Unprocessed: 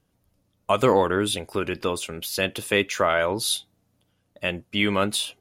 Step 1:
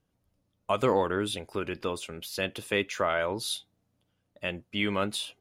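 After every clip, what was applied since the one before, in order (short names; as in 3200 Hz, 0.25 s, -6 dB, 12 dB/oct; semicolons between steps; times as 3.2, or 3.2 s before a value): high shelf 8100 Hz -6.5 dB; gain -6 dB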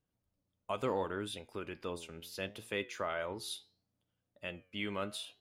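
flange 0.71 Hz, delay 7.7 ms, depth 4.9 ms, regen +86%; gain -5 dB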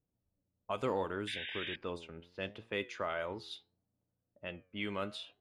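painted sound noise, 1.27–1.76, 1500–3800 Hz -42 dBFS; low-pass opened by the level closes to 750 Hz, open at -32.5 dBFS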